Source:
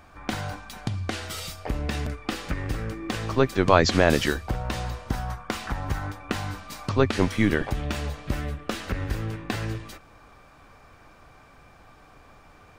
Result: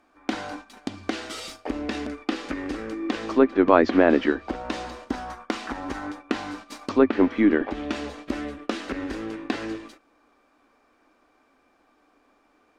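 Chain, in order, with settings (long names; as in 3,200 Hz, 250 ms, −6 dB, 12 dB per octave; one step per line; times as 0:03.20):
running median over 3 samples
noise gate −39 dBFS, range −11 dB
low shelf with overshoot 190 Hz −12.5 dB, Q 3
treble cut that deepens with the level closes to 2,100 Hz, closed at −18 dBFS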